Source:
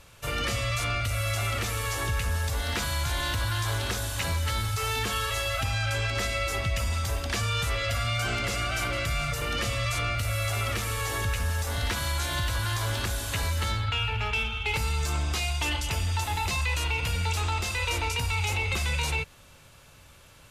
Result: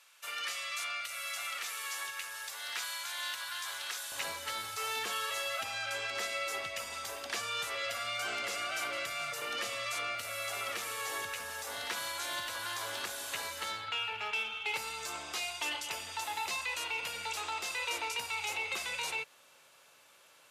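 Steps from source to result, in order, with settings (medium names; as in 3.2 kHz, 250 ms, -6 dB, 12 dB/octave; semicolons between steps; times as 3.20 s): high-pass 1.2 kHz 12 dB/octave, from 4.12 s 450 Hz; trim -5.5 dB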